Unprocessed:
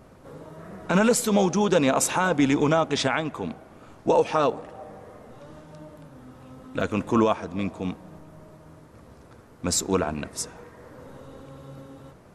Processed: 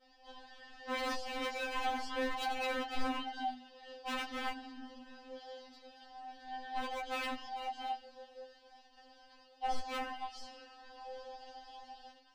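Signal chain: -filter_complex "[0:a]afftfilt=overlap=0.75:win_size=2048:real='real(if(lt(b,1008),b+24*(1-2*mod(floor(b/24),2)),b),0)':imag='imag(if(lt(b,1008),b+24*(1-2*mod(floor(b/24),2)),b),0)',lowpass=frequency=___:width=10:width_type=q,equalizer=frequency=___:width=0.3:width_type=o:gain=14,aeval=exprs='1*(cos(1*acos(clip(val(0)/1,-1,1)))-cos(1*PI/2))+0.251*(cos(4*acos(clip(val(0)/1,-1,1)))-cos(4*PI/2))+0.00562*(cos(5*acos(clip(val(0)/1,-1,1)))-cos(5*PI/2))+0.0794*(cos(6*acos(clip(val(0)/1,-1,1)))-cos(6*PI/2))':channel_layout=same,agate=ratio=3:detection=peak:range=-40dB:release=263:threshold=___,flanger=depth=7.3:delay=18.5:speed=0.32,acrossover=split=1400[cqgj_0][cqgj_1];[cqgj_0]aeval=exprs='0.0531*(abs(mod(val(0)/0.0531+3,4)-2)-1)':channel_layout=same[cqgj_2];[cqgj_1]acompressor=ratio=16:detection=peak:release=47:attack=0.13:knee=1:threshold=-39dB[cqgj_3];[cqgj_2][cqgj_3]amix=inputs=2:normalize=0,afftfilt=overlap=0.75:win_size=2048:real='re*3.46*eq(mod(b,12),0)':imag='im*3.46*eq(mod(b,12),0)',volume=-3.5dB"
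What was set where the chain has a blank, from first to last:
4800, 3100, -44dB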